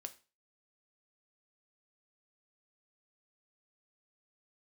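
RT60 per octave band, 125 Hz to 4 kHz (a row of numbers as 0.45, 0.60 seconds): 0.35, 0.35, 0.35, 0.35, 0.30, 0.30 seconds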